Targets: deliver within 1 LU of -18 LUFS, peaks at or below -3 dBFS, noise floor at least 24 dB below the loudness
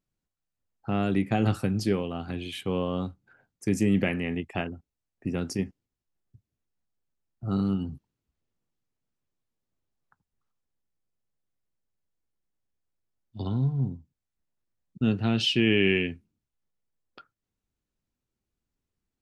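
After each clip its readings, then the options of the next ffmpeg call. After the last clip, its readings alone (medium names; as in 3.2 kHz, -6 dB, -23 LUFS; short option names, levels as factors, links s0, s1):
loudness -28.0 LUFS; peak level -10.5 dBFS; loudness target -18.0 LUFS
-> -af "volume=3.16,alimiter=limit=0.708:level=0:latency=1"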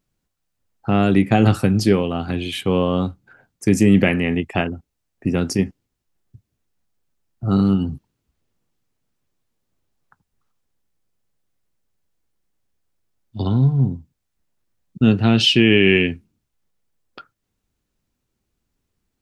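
loudness -18.5 LUFS; peak level -3.0 dBFS; noise floor -77 dBFS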